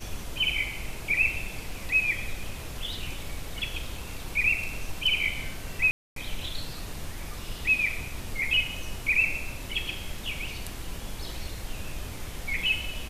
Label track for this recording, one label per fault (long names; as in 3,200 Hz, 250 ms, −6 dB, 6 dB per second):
5.910000	6.160000	drop-out 253 ms